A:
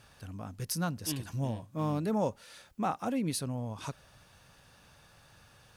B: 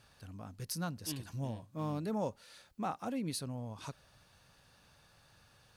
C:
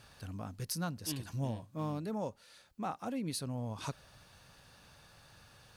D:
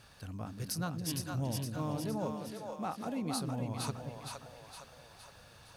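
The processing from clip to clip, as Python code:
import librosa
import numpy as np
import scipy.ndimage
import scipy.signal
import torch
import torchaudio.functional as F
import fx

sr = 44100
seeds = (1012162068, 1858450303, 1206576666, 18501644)

y1 = fx.peak_eq(x, sr, hz=4300.0, db=4.5, octaves=0.28)
y1 = y1 * 10.0 ** (-5.5 / 20.0)
y2 = fx.rider(y1, sr, range_db=4, speed_s=0.5)
y2 = y2 * 10.0 ** (1.5 / 20.0)
y3 = fx.echo_split(y2, sr, split_hz=440.0, low_ms=183, high_ms=463, feedback_pct=52, wet_db=-3.5)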